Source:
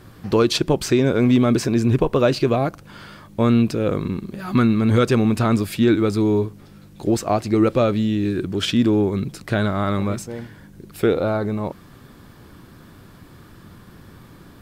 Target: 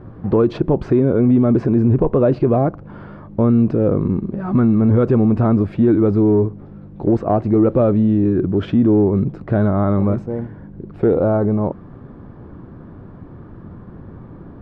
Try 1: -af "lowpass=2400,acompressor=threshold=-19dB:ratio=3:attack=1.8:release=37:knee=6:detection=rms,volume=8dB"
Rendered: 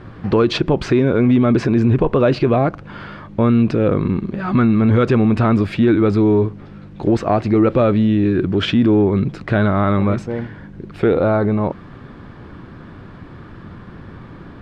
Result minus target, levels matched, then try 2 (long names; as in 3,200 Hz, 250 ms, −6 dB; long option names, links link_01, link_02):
2,000 Hz band +10.5 dB
-af "lowpass=850,acompressor=threshold=-19dB:ratio=3:attack=1.8:release=37:knee=6:detection=rms,volume=8dB"